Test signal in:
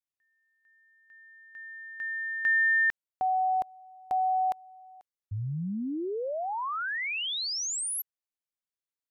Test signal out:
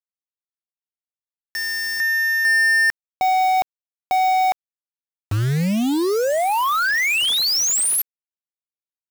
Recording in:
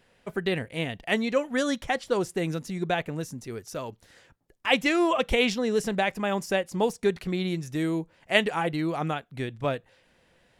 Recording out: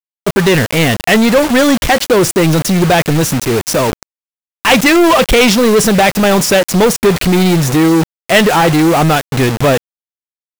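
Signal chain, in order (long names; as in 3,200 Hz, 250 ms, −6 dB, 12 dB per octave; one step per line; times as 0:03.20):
bit reduction 7 bits
power curve on the samples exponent 0.35
level +6 dB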